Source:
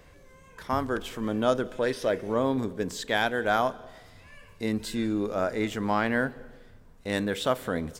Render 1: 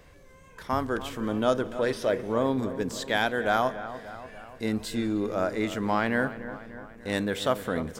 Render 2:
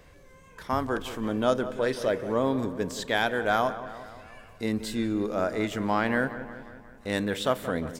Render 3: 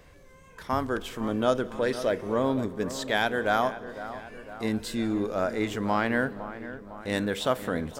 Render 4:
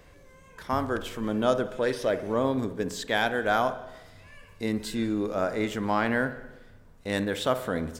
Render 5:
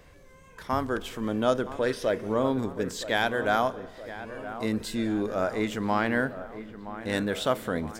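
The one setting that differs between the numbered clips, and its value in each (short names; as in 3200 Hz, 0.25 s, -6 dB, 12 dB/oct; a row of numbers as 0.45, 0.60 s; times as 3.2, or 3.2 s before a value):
dark delay, time: 293, 178, 506, 61, 970 ms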